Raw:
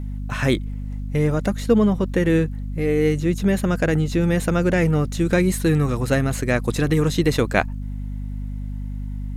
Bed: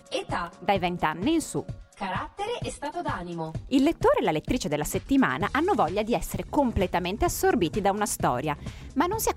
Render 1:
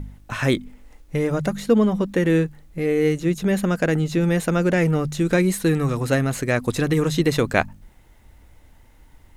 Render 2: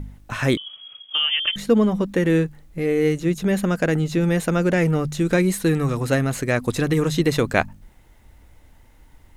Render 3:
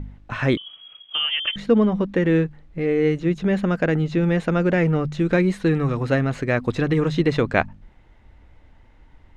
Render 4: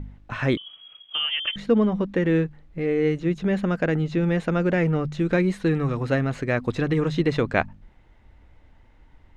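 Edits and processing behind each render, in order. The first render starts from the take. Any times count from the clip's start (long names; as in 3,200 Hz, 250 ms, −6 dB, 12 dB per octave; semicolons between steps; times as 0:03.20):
hum removal 50 Hz, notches 5
0:00.57–0:01.56: voice inversion scrambler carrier 3,300 Hz
low-pass filter 3,300 Hz 12 dB per octave
level −2.5 dB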